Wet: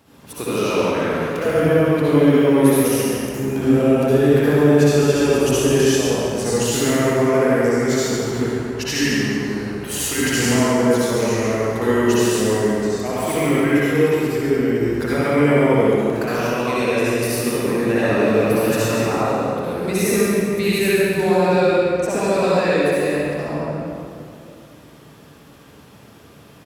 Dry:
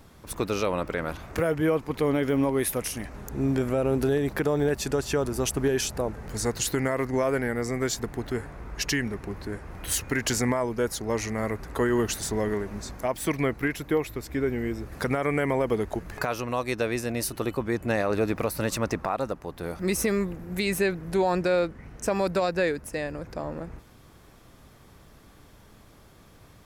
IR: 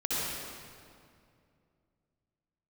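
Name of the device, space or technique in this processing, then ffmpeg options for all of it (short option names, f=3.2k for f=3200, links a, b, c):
PA in a hall: -filter_complex "[0:a]highpass=120,equalizer=f=2.8k:t=o:w=0.29:g=5,aecho=1:1:138:0.398[a];[1:a]atrim=start_sample=2205[b];[a][b]afir=irnorm=-1:irlink=0,volume=-1dB"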